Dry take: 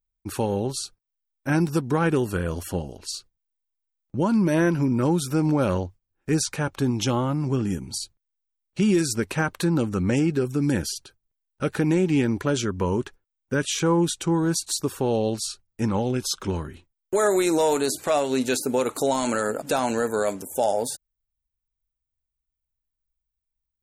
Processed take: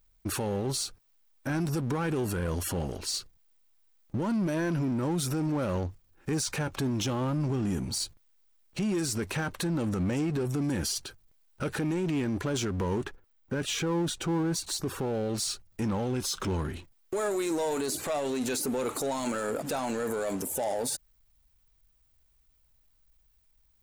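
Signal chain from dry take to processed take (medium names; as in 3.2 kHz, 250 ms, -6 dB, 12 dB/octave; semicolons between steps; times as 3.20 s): 13.04–15.29 s: peaking EQ 10 kHz -10 dB 2.7 oct; peak limiter -23.5 dBFS, peak gain reduction 11 dB; power-law waveshaper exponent 0.7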